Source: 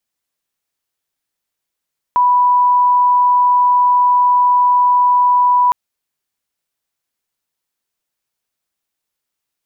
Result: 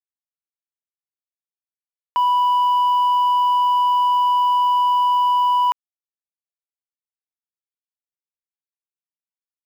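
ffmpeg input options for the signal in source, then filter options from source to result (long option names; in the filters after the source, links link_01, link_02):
-f lavfi -i "sine=frequency=986:duration=3.56:sample_rate=44100,volume=9.56dB"
-af "acrusher=bits=6:mix=0:aa=0.000001,highpass=frequency=780:poles=1,asoftclip=type=tanh:threshold=-13.5dB"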